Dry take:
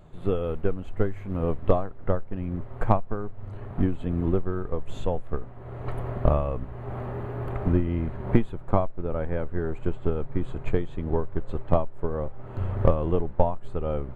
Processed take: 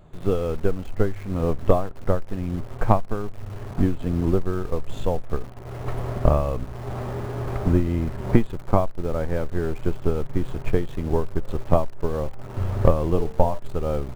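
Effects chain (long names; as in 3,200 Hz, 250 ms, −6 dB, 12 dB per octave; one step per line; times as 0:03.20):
0:13.07–0:13.59: hum removal 74.97 Hz, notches 31
in parallel at −11 dB: bit reduction 6 bits
on the sum: level +1 dB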